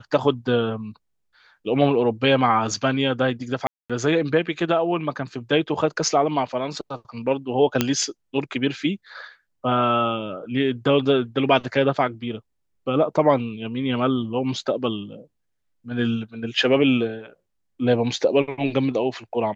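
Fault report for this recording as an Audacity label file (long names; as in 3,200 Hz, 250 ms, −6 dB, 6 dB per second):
3.670000	3.900000	drop-out 226 ms
7.810000	7.810000	click −3 dBFS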